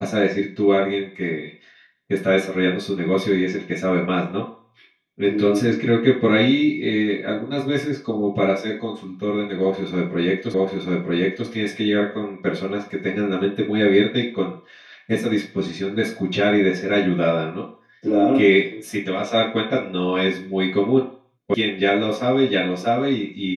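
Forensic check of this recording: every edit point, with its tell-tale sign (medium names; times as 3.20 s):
10.54 s: repeat of the last 0.94 s
21.54 s: sound stops dead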